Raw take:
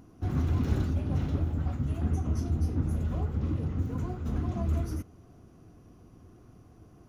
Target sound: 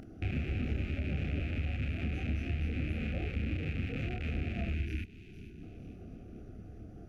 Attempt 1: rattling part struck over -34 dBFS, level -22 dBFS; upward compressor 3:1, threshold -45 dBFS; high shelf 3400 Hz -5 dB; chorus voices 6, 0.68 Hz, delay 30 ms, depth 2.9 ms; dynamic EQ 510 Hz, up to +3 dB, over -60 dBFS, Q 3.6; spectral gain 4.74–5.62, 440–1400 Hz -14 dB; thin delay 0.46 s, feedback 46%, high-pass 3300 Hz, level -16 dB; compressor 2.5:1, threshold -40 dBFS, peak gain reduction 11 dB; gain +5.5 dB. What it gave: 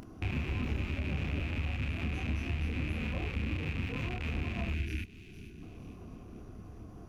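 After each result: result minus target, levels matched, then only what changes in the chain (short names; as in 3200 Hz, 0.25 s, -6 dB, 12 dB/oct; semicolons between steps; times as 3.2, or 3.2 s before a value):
8000 Hz band +7.0 dB; 1000 Hz band +4.5 dB
change: high shelf 3400 Hz -14.5 dB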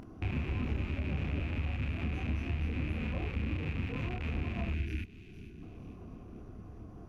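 1000 Hz band +4.5 dB
add after dynamic EQ: Butterworth band-stop 1000 Hz, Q 1.8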